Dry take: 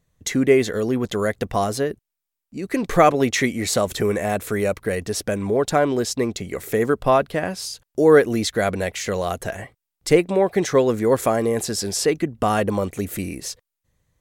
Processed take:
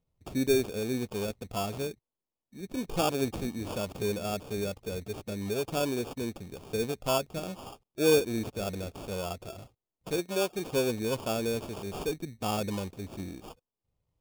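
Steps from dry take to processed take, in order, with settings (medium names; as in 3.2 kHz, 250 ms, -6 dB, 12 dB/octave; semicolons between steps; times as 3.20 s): sample-and-hold 22×; 10.11–10.73 s: bass shelf 170 Hz -10 dB; harmonic-percussive split percussive -8 dB; peaking EQ 1.6 kHz -11.5 dB 0.45 oct; trim -8.5 dB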